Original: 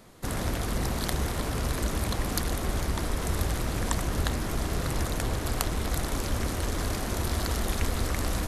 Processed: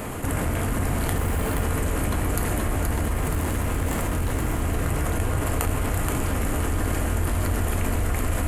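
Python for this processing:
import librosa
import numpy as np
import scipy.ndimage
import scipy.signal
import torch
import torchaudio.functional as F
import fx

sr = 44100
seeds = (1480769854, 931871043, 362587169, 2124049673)

p1 = fx.band_shelf(x, sr, hz=4600.0, db=-11.0, octaves=1.0)
p2 = fx.clip_hard(p1, sr, threshold_db=-27.5, at=(2.97, 4.62))
p3 = p2 + fx.echo_feedback(p2, sr, ms=475, feedback_pct=39, wet_db=-5.0, dry=0)
p4 = fx.rev_fdn(p3, sr, rt60_s=1.1, lf_ratio=1.6, hf_ratio=0.85, size_ms=66.0, drr_db=3.5)
p5 = fx.resample_bad(p4, sr, factor=2, down='none', up='hold', at=(1.17, 1.63))
p6 = fx.env_flatten(p5, sr, amount_pct=70)
y = p6 * librosa.db_to_amplitude(-3.0)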